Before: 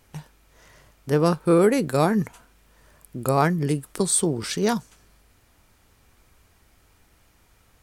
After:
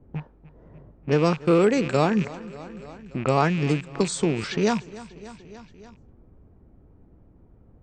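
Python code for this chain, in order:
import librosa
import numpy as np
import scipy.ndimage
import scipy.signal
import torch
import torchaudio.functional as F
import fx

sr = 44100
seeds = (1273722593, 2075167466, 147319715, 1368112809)

p1 = fx.rattle_buzz(x, sr, strikes_db=-35.0, level_db=-25.0)
p2 = fx.env_lowpass(p1, sr, base_hz=330.0, full_db=-20.5)
p3 = scipy.signal.sosfilt(scipy.signal.butter(16, 7900.0, 'lowpass', fs=sr, output='sos'), p2)
p4 = p3 + fx.echo_feedback(p3, sr, ms=292, feedback_pct=54, wet_db=-21.0, dry=0)
y = fx.band_squash(p4, sr, depth_pct=40)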